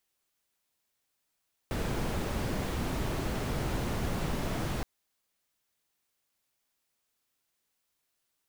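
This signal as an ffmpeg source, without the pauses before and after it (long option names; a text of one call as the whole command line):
ffmpeg -f lavfi -i "anoisesrc=color=brown:amplitude=0.124:duration=3.12:sample_rate=44100:seed=1" out.wav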